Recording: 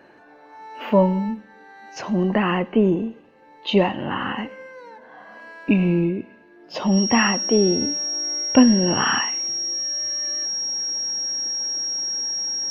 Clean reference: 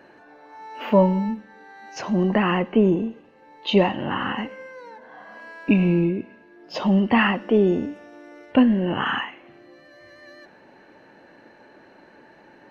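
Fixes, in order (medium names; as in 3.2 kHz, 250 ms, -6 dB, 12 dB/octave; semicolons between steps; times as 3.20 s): band-stop 5.6 kHz, Q 30; trim 0 dB, from 7.81 s -3 dB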